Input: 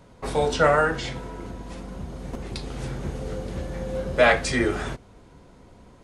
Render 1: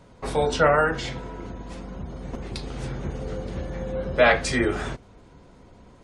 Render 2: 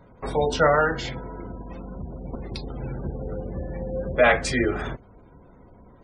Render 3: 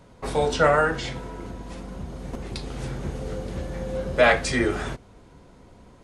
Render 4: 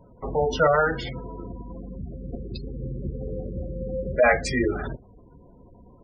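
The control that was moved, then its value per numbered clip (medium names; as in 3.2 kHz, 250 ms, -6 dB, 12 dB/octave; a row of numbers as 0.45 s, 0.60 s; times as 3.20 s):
spectral gate, under each frame's peak: -40 dB, -25 dB, -55 dB, -15 dB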